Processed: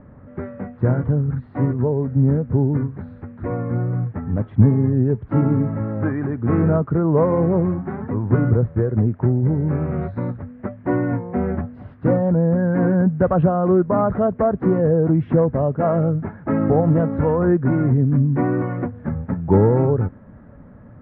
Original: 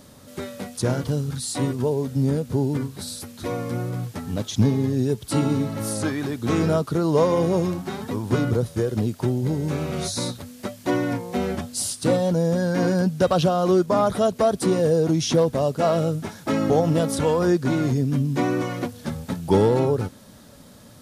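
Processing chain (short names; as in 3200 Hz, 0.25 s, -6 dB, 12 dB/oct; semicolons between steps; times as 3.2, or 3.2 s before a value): steep low-pass 1900 Hz 36 dB/oct; low shelf 170 Hz +10.5 dB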